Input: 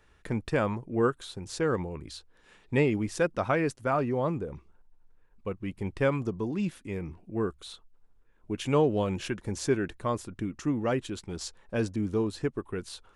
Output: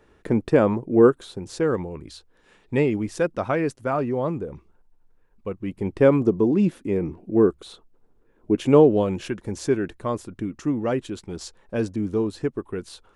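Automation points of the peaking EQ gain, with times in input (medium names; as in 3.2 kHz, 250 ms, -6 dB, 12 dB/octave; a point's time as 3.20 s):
peaking EQ 350 Hz 2.6 oct
1.09 s +12.5 dB
1.82 s +4.5 dB
5.50 s +4.5 dB
6.16 s +14 dB
8.61 s +14 dB
9.24 s +5 dB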